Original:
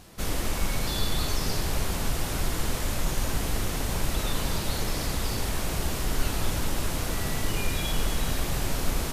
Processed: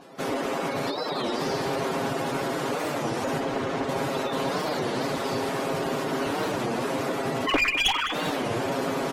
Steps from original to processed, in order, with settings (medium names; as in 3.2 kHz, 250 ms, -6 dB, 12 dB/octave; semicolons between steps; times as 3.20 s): 7.47–8.12 s: formants replaced by sine waves; high-pass 420 Hz 12 dB/octave; spectral gate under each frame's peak -15 dB strong; tilt EQ -4 dB/octave; comb 7.4 ms, depth 57%; one-sided clip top -28.5 dBFS; 3.40–3.89 s: distance through air 78 m; feedback delay 207 ms, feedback 57%, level -13.5 dB; warped record 33 1/3 rpm, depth 250 cents; trim +6 dB